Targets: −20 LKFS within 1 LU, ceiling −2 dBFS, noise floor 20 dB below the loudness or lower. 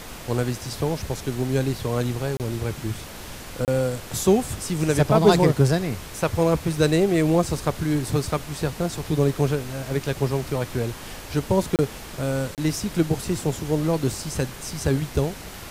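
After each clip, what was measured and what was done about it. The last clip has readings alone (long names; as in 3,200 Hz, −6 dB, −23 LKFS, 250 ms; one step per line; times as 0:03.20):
number of dropouts 4; longest dropout 28 ms; background noise floor −38 dBFS; target noise floor −44 dBFS; integrated loudness −24.0 LKFS; sample peak −5.0 dBFS; target loudness −20.0 LKFS
→ repair the gap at 0:02.37/0:03.65/0:11.76/0:12.55, 28 ms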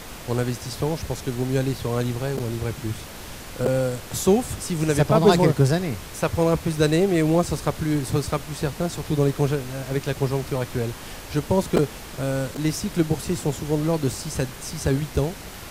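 number of dropouts 0; background noise floor −38 dBFS; target noise floor −44 dBFS
→ noise reduction from a noise print 6 dB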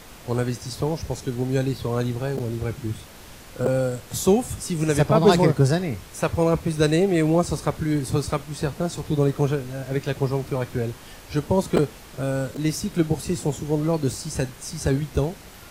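background noise floor −44 dBFS; integrated loudness −24.0 LKFS; sample peak −4.5 dBFS; target loudness −20.0 LKFS
→ level +4 dB
brickwall limiter −2 dBFS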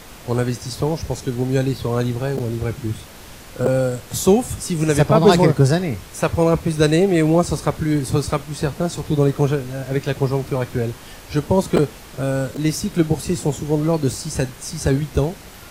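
integrated loudness −20.0 LKFS; sample peak −2.0 dBFS; background noise floor −40 dBFS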